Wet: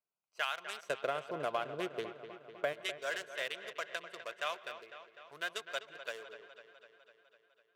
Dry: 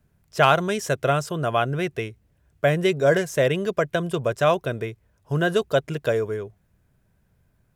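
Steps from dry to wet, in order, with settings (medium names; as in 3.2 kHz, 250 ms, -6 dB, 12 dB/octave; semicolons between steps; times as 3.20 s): local Wiener filter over 25 samples; Bessel high-pass 2.1 kHz, order 2, from 0.89 s 570 Hz, from 2.72 s 1.9 kHz; compression 6:1, threshold -27 dBFS, peak gain reduction 9 dB; feedback echo behind a low-pass 251 ms, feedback 65%, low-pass 3.7 kHz, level -11.5 dB; reverberation, pre-delay 119 ms, DRR 22 dB; trim -4 dB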